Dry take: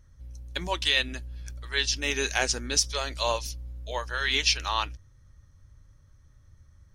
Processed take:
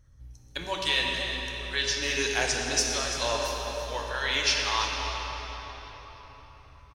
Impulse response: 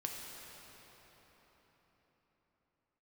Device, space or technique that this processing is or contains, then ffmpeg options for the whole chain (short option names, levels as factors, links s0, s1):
cave: -filter_complex "[0:a]aecho=1:1:338:0.251[s0];[1:a]atrim=start_sample=2205[s1];[s0][s1]afir=irnorm=-1:irlink=0"